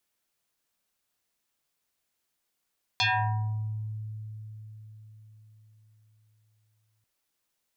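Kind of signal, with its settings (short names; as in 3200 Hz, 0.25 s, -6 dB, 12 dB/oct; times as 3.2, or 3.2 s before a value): FM tone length 4.04 s, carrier 108 Hz, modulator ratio 7.95, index 5.8, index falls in 0.92 s exponential, decay 4.79 s, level -21 dB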